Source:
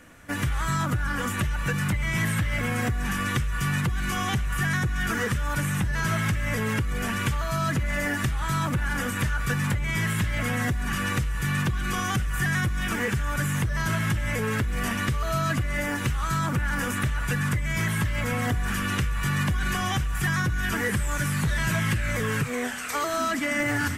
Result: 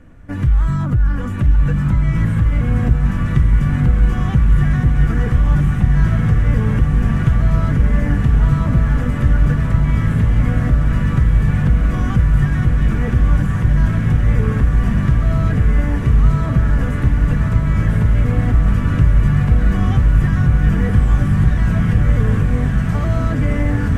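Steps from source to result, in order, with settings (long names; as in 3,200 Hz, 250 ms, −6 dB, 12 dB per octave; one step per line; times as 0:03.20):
spectral tilt −4 dB per octave
on a send: feedback delay with all-pass diffusion 1,258 ms, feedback 79%, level −4 dB
on the sum: level −2 dB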